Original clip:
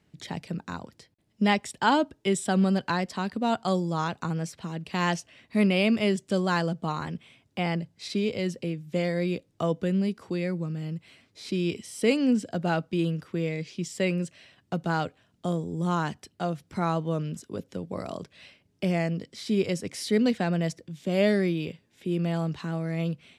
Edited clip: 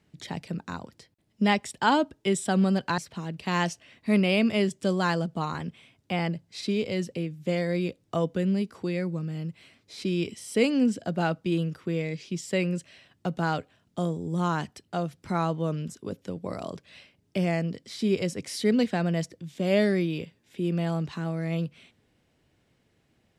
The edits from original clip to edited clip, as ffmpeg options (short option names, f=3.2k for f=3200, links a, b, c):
-filter_complex "[0:a]asplit=2[a][b];[a]atrim=end=2.982[c];[b]atrim=start=4.448[d];[c][d]acrossfade=d=0.004:c1=hsin:c2=hsin"